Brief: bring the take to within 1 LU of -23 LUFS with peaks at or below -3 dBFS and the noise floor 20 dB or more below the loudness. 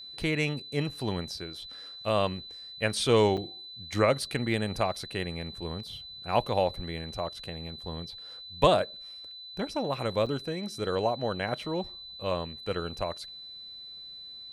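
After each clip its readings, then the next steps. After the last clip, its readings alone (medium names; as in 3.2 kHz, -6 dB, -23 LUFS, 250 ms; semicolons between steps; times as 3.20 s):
dropouts 2; longest dropout 6.4 ms; steady tone 4 kHz; tone level -42 dBFS; loudness -30.5 LUFS; peak level -9.0 dBFS; loudness target -23.0 LUFS
-> interpolate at 3.37/10.26 s, 6.4 ms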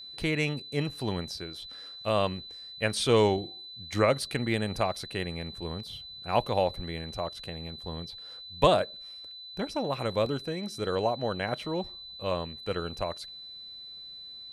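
dropouts 0; steady tone 4 kHz; tone level -42 dBFS
-> band-stop 4 kHz, Q 30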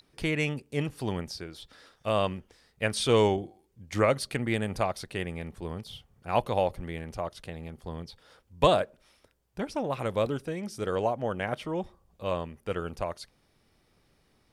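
steady tone not found; loudness -30.5 LUFS; peak level -9.0 dBFS; loudness target -23.0 LUFS
-> trim +7.5 dB; peak limiter -3 dBFS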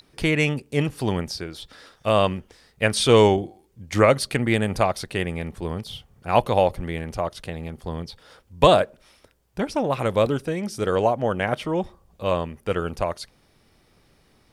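loudness -23.0 LUFS; peak level -3.0 dBFS; noise floor -61 dBFS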